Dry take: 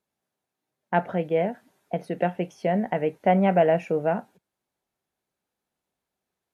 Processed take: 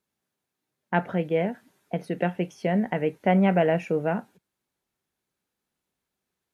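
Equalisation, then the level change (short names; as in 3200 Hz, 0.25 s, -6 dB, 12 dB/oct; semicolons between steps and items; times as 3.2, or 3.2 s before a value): bell 680 Hz -6 dB 0.98 oct; +2.0 dB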